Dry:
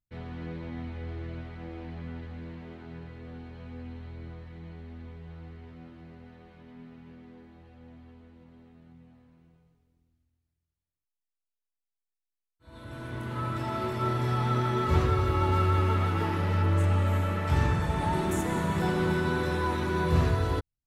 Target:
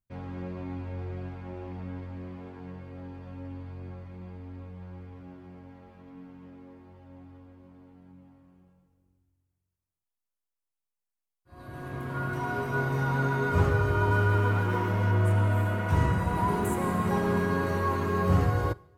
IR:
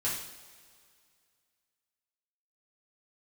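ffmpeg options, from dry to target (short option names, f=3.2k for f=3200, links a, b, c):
-filter_complex "[0:a]asplit=2[a][b];[1:a]atrim=start_sample=2205[c];[b][c]afir=irnorm=-1:irlink=0,volume=-24dB[d];[a][d]amix=inputs=2:normalize=0,asetrate=48510,aresample=44100,equalizer=f=1k:t=o:w=1:g=3,equalizer=f=2k:t=o:w=1:g=-3,equalizer=f=4k:t=o:w=1:g=-8"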